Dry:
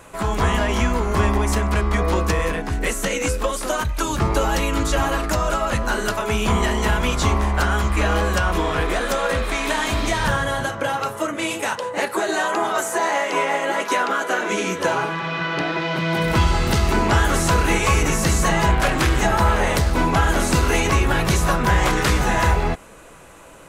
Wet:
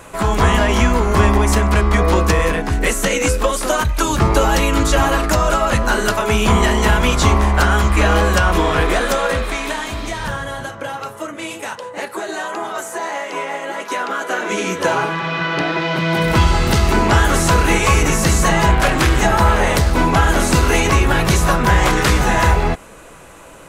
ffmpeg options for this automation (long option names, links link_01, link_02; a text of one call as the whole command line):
ffmpeg -i in.wav -af "volume=13dB,afade=type=out:start_time=8.94:duration=0.96:silence=0.354813,afade=type=in:start_time=13.81:duration=1.18:silence=0.421697" out.wav